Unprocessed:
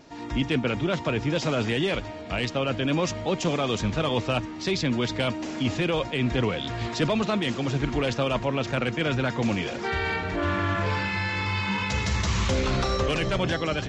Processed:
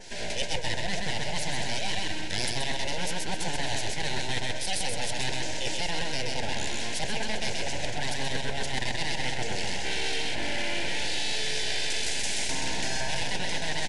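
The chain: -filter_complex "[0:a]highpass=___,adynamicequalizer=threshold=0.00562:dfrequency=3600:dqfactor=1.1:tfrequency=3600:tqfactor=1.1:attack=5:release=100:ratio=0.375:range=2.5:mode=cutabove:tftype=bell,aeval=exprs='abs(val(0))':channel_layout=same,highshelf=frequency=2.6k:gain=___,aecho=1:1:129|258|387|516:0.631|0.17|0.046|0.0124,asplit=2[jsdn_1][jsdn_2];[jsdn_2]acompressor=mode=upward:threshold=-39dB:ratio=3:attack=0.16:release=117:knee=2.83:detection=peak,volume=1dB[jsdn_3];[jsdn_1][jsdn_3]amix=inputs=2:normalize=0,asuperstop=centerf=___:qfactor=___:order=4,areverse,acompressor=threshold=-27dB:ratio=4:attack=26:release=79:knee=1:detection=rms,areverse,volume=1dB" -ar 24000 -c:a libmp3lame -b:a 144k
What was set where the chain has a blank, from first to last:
320, 7.5, 1200, 1.8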